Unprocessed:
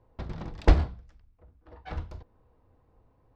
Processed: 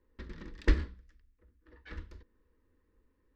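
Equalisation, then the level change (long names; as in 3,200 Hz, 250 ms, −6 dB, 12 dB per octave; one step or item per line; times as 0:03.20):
parametric band 1,800 Hz +10 dB 0.26 octaves
phaser with its sweep stopped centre 300 Hz, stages 4
−4.5 dB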